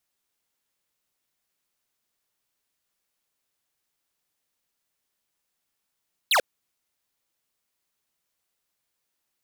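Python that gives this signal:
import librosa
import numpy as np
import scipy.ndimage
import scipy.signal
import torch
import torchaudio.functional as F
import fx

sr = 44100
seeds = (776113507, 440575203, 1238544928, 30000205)

y = fx.laser_zap(sr, level_db=-19.5, start_hz=4500.0, end_hz=450.0, length_s=0.09, wave='square')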